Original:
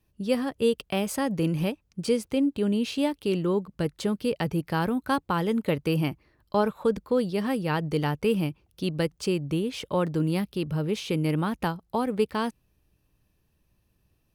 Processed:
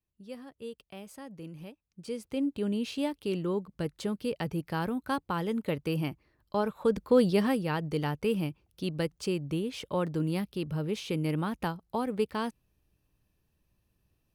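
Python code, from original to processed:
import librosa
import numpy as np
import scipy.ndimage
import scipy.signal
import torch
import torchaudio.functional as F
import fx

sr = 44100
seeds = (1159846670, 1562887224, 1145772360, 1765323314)

y = fx.gain(x, sr, db=fx.line((1.84, -18.0), (2.44, -5.5), (6.65, -5.5), (7.29, 4.0), (7.72, -4.5)))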